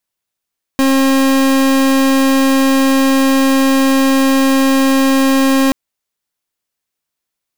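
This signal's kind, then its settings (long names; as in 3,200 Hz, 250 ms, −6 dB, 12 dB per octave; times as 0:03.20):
pulse wave 269 Hz, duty 38% −11 dBFS 4.93 s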